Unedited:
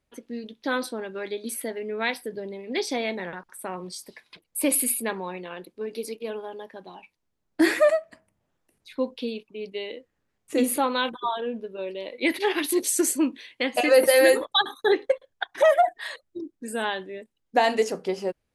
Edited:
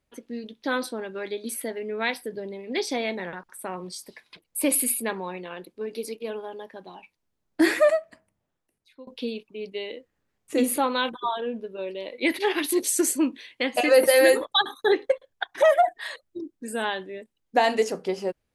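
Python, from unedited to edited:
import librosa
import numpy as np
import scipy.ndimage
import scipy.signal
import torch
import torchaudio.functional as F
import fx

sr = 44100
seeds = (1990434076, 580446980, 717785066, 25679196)

y = fx.edit(x, sr, fx.fade_out_to(start_s=7.98, length_s=1.09, floor_db=-23.5), tone=tone)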